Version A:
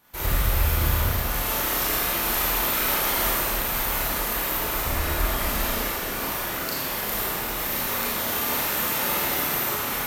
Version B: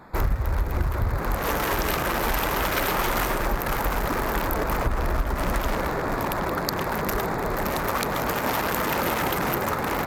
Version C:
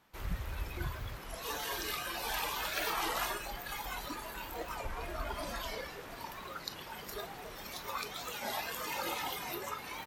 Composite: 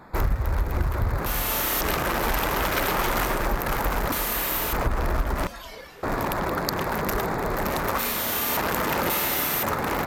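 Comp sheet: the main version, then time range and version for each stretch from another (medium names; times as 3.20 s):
B
1.26–1.81 s: from A
4.12–4.73 s: from A
5.47–6.03 s: from C
7.99–8.57 s: from A
9.10–9.63 s: from A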